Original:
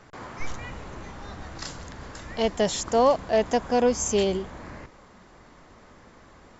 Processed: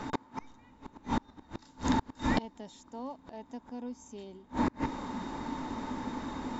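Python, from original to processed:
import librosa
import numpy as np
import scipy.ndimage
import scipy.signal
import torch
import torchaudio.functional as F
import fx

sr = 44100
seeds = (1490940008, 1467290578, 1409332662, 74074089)

y = fx.rider(x, sr, range_db=10, speed_s=2.0)
y = fx.small_body(y, sr, hz=(260.0, 890.0, 3700.0), ring_ms=50, db=16)
y = fx.gate_flip(y, sr, shuts_db=-24.0, range_db=-33)
y = F.gain(torch.from_numpy(y), 7.5).numpy()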